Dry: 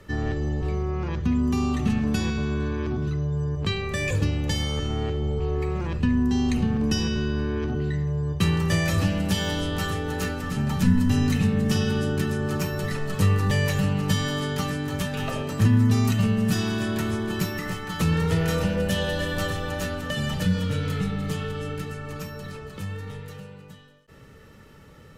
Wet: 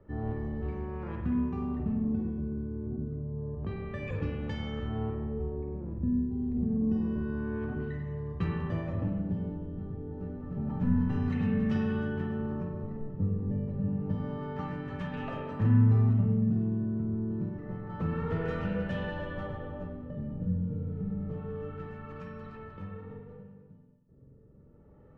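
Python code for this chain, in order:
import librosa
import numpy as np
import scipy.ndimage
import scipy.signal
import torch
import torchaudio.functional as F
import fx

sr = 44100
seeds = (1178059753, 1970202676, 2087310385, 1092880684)

y = fx.filter_lfo_lowpass(x, sr, shape='sine', hz=0.28, low_hz=340.0, high_hz=1900.0, q=0.8)
y = fx.rev_spring(y, sr, rt60_s=1.2, pass_ms=(45,), chirp_ms=60, drr_db=2.0)
y = F.gain(torch.from_numpy(y), -8.5).numpy()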